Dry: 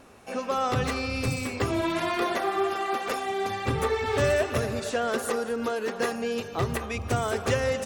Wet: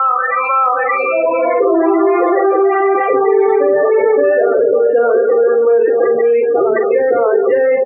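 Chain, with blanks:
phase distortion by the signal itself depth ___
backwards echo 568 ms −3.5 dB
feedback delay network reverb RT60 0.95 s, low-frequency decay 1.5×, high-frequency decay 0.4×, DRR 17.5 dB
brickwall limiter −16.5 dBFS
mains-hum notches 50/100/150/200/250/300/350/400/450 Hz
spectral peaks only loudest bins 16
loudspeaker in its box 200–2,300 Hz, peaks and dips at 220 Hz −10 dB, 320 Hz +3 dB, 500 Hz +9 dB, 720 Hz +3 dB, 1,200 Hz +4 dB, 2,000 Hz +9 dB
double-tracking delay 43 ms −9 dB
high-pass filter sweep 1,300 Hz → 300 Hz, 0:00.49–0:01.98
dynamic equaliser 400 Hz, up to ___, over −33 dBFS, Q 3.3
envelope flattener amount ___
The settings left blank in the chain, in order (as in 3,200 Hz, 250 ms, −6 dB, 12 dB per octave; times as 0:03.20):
0.067 ms, +6 dB, 70%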